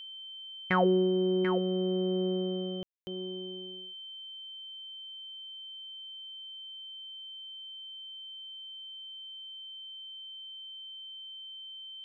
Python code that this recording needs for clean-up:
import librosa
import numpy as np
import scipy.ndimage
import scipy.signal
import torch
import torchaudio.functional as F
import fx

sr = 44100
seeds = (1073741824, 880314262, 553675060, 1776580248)

y = fx.notch(x, sr, hz=3100.0, q=30.0)
y = fx.fix_ambience(y, sr, seeds[0], print_start_s=7.89, print_end_s=8.39, start_s=2.83, end_s=3.07)
y = fx.fix_echo_inverse(y, sr, delay_ms=739, level_db=-8.5)